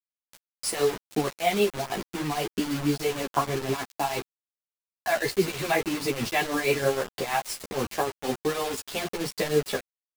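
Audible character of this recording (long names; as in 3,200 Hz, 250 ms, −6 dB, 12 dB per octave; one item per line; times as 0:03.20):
tremolo triangle 6.3 Hz, depth 80%
a quantiser's noise floor 6 bits, dither none
a shimmering, thickened sound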